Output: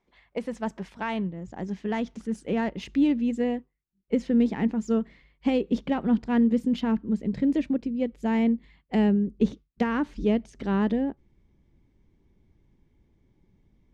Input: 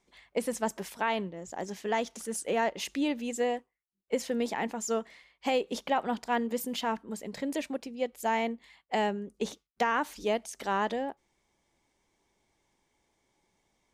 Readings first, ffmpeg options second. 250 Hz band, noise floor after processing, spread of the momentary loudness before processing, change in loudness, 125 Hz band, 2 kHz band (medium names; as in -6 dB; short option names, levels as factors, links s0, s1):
+11.5 dB, -72 dBFS, 7 LU, +5.5 dB, +13.0 dB, -2.5 dB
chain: -af "asubboost=boost=10.5:cutoff=230,adynamicsmooth=sensitivity=1.5:basefreq=3400"